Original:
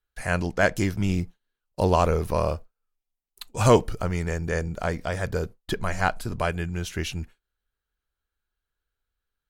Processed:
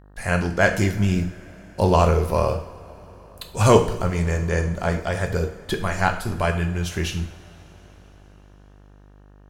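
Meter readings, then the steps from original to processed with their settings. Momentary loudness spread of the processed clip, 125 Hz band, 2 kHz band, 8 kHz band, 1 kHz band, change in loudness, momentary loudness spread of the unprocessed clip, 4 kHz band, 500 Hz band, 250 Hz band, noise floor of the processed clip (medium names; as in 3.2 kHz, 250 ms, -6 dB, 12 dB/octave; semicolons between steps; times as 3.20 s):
14 LU, +5.0 dB, +3.5 dB, +3.5 dB, +3.5 dB, +3.5 dB, 13 LU, +3.5 dB, +3.5 dB, +4.0 dB, -49 dBFS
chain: two-slope reverb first 0.55 s, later 4.9 s, from -21 dB, DRR 4 dB; mains buzz 50 Hz, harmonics 37, -51 dBFS -6 dB/octave; trim +2 dB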